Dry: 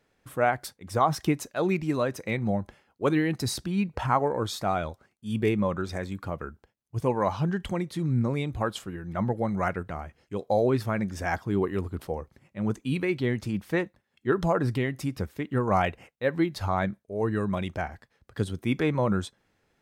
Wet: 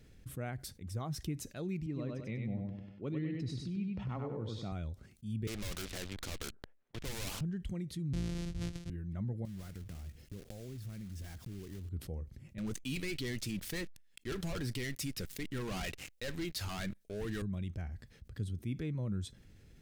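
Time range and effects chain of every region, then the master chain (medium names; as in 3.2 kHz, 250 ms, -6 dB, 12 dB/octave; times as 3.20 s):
1.86–4.72 s: band-pass 130–3300 Hz + band-stop 1.6 kHz, Q 8.1 + feedback delay 97 ms, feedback 31%, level -3.5 dB
5.47–7.41 s: Butterworth band-pass 920 Hz, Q 0.74 + waveshaping leveller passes 5 + spectrum-flattening compressor 2:1
8.13–8.90 s: sorted samples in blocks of 256 samples + low-pass 6.1 kHz + treble shelf 4.8 kHz +8 dB
9.45–11.91 s: block-companded coder 3-bit + compression, threshold -40 dBFS
12.58–17.42 s: high-pass 1.4 kHz 6 dB/octave + waveshaping leveller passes 5
whole clip: amplifier tone stack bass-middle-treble 10-0-1; level flattener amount 50%; trim +3 dB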